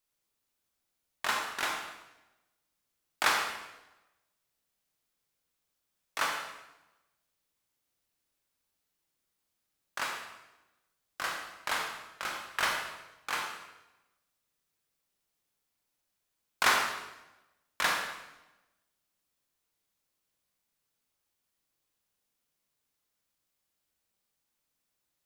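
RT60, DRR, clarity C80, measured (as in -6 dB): 1.0 s, 1.0 dB, 5.5 dB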